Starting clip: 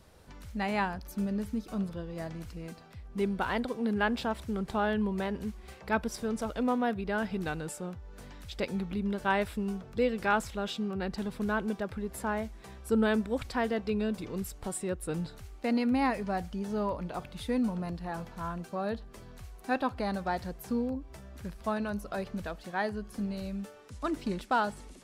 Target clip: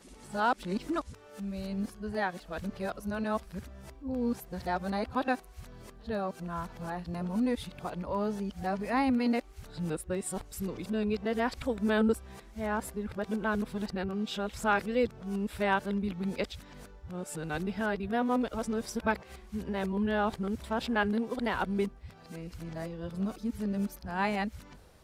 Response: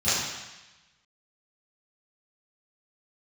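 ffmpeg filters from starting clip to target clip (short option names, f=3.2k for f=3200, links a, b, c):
-af "areverse,bandreject=f=50:t=h:w=6,bandreject=f=100:t=h:w=6"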